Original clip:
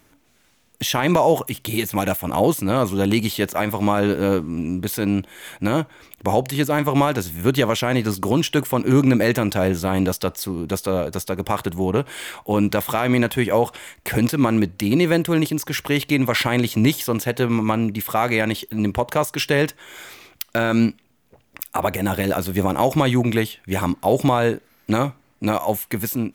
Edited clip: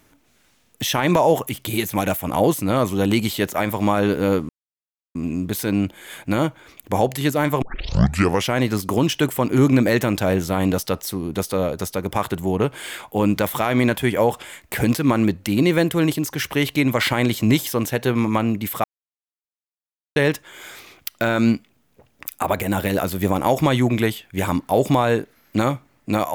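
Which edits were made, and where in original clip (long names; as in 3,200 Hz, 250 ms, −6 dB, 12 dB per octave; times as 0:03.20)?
0:04.49: splice in silence 0.66 s
0:06.96: tape start 0.86 s
0:18.18–0:19.50: silence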